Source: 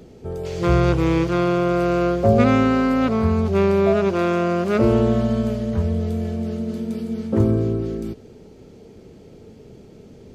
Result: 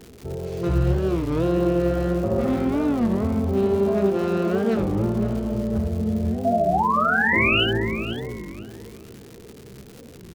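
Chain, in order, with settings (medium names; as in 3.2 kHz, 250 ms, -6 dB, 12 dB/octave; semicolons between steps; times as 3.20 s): self-modulated delay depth 0.23 ms; tilt shelf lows +5 dB; peak limiter -10.5 dBFS, peak gain reduction 9 dB; flange 1.8 Hz, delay 8.3 ms, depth 7.8 ms, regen +66%; painted sound rise, 6.46–7.64 s, 570–3100 Hz -20 dBFS; early reflections 15 ms -6 dB, 74 ms -5 dB; crackle 230 per s -30 dBFS; filtered feedback delay 499 ms, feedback 33%, low-pass 1.6 kHz, level -8 dB; warped record 33 1/3 rpm, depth 250 cents; trim -2.5 dB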